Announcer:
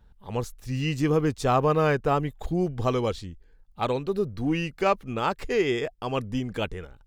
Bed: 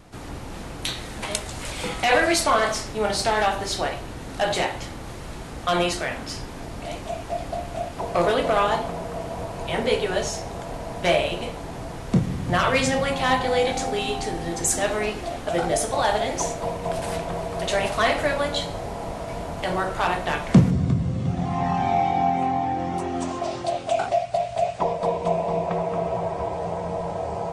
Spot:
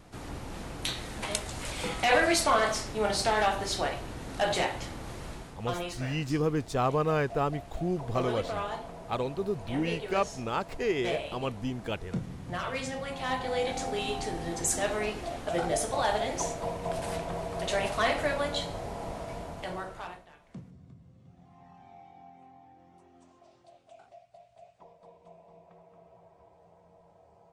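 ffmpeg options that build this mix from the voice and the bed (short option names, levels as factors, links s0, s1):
-filter_complex "[0:a]adelay=5300,volume=0.562[s0];[1:a]volume=1.41,afade=t=out:st=5.27:d=0.31:silence=0.354813,afade=t=in:st=13:d=1.08:silence=0.421697,afade=t=out:st=19.16:d=1.12:silence=0.0562341[s1];[s0][s1]amix=inputs=2:normalize=0"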